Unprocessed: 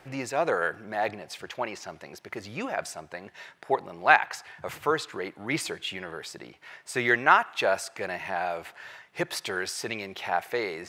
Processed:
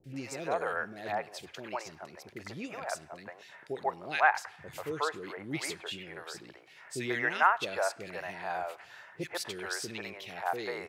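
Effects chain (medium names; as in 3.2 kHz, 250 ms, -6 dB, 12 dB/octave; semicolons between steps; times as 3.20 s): three bands offset in time lows, highs, mids 40/140 ms, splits 450/2200 Hz; trim -4 dB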